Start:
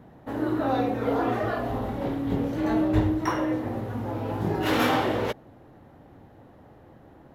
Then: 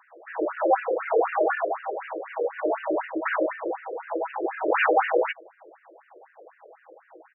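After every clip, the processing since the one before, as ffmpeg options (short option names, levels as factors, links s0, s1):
-af "aecho=1:1:6.2:0.33,afftfilt=real='re*between(b*sr/1024,430*pow(2100/430,0.5+0.5*sin(2*PI*4*pts/sr))/1.41,430*pow(2100/430,0.5+0.5*sin(2*PI*4*pts/sr))*1.41)':imag='im*between(b*sr/1024,430*pow(2100/430,0.5+0.5*sin(2*PI*4*pts/sr))/1.41,430*pow(2100/430,0.5+0.5*sin(2*PI*4*pts/sr))*1.41)':win_size=1024:overlap=0.75,volume=2.66"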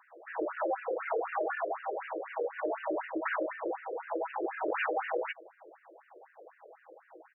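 -af "acompressor=threshold=0.0562:ratio=6,volume=0.631"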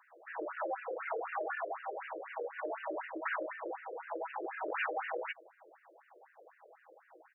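-af "lowshelf=f=490:g=-10,volume=0.841"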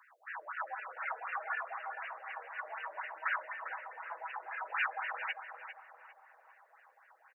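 -filter_complex "[0:a]highpass=f=930:w=0.5412,highpass=f=930:w=1.3066,asplit=2[s0][s1];[s1]adelay=400,lowpass=f=1600:p=1,volume=0.473,asplit=2[s2][s3];[s3]adelay=400,lowpass=f=1600:p=1,volume=0.47,asplit=2[s4][s5];[s5]adelay=400,lowpass=f=1600:p=1,volume=0.47,asplit=2[s6][s7];[s7]adelay=400,lowpass=f=1600:p=1,volume=0.47,asplit=2[s8][s9];[s9]adelay=400,lowpass=f=1600:p=1,volume=0.47,asplit=2[s10][s11];[s11]adelay=400,lowpass=f=1600:p=1,volume=0.47[s12];[s2][s4][s6][s8][s10][s12]amix=inputs=6:normalize=0[s13];[s0][s13]amix=inputs=2:normalize=0,volume=1.41"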